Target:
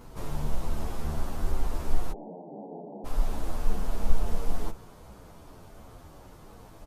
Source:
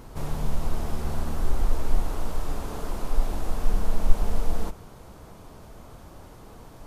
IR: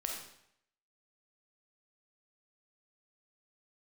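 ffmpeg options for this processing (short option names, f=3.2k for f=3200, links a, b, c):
-filter_complex "[0:a]asplit=3[a][b][c];[a]afade=t=out:st=2.11:d=0.02[d];[b]asuperpass=centerf=370:order=20:qfactor=0.53,afade=t=in:st=2.11:d=0.02,afade=t=out:st=3.04:d=0.02[e];[c]afade=t=in:st=3.04:d=0.02[f];[d][e][f]amix=inputs=3:normalize=0,asplit=2[g][h];[h]adelay=9.8,afreqshift=-2.8[i];[g][i]amix=inputs=2:normalize=1"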